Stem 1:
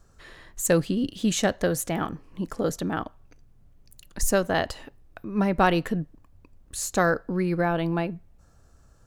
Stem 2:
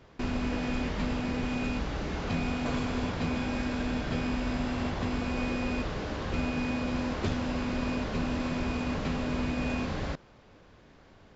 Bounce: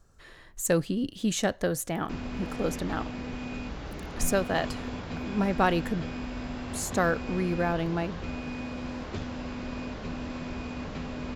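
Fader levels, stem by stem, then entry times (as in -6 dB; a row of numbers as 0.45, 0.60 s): -3.5, -5.0 dB; 0.00, 1.90 s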